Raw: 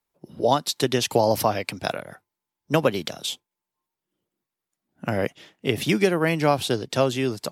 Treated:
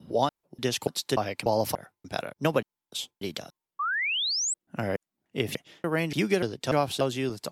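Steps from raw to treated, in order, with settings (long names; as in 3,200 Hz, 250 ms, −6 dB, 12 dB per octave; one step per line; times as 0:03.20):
slices reordered back to front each 292 ms, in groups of 2
sound drawn into the spectrogram rise, 0:03.79–0:04.54, 1,100–8,200 Hz −23 dBFS
level −5 dB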